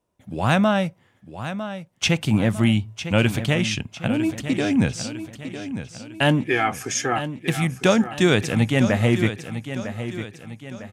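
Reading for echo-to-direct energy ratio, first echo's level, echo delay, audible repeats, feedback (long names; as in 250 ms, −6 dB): −10.0 dB, −11.0 dB, 953 ms, 4, 45%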